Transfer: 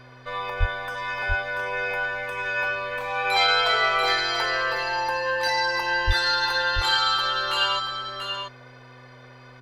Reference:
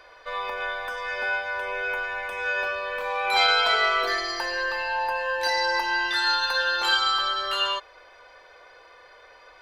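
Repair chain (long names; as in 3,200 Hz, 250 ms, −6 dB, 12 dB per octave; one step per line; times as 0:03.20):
hum removal 126 Hz, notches 4
0:00.59–0:00.71: high-pass filter 140 Hz 24 dB per octave
0:06.06–0:06.18: high-pass filter 140 Hz 24 dB per octave
echo removal 687 ms −5.5 dB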